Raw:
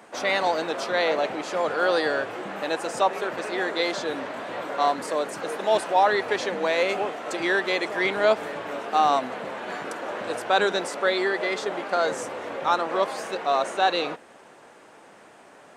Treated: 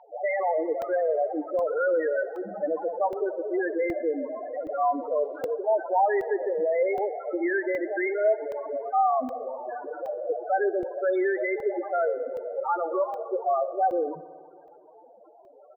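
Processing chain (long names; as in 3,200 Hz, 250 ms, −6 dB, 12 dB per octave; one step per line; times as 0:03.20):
in parallel at +0.5 dB: compressor whose output falls as the input rises −27 dBFS
on the sum: three-band delay without the direct sound mids, lows, highs 50/100 ms, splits 180/4,100 Hz
spectral peaks only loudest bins 4
on a send: echo machine with several playback heads 61 ms, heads first and second, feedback 73%, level −23 dB
0:04.69–0:05.53: on the sum: surface crackle 47 per second → 170 per second −50 dBFS
high-frequency loss of the air 320 metres
regular buffer underruns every 0.77 s, samples 64, zero, from 0:00.82
level −1.5 dB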